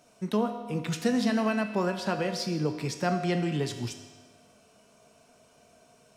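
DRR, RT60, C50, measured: 5.5 dB, 1.4 s, 8.0 dB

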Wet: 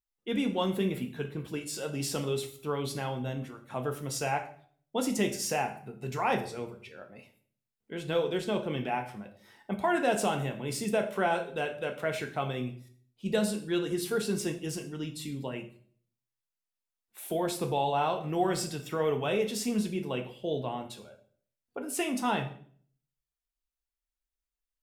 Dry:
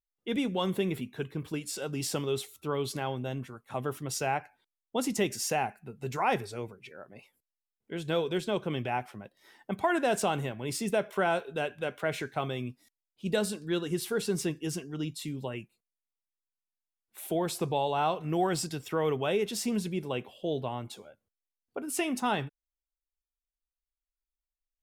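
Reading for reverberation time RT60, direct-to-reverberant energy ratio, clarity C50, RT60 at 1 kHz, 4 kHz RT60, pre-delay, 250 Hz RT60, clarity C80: 0.50 s, 4.0 dB, 11.5 dB, 0.50 s, 0.45 s, 4 ms, 0.65 s, 15.0 dB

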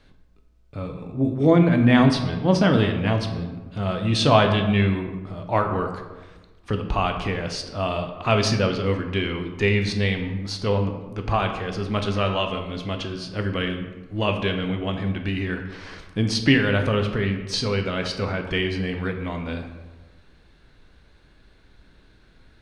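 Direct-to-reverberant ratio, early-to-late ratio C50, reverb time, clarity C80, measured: 5.0 dB, 7.5 dB, 1.3 s, 9.5 dB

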